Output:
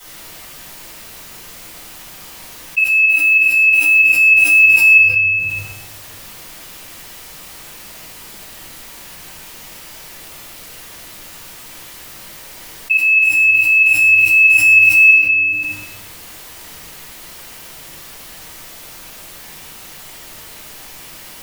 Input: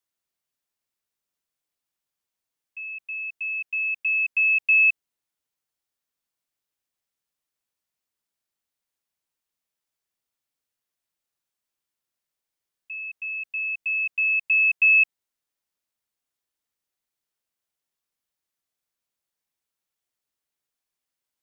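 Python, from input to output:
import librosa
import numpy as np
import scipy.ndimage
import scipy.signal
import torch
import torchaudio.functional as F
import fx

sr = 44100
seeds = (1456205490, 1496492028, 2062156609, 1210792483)

y = fx.block_float(x, sr, bits=5)
y = fx.dynamic_eq(y, sr, hz=2400.0, q=1.1, threshold_db=-32.0, ratio=4.0, max_db=-4)
y = fx.room_shoebox(y, sr, seeds[0], volume_m3=280.0, walls='mixed', distance_m=7.0)
y = fx.env_flatten(y, sr, amount_pct=70)
y = F.gain(torch.from_numpy(y), -4.0).numpy()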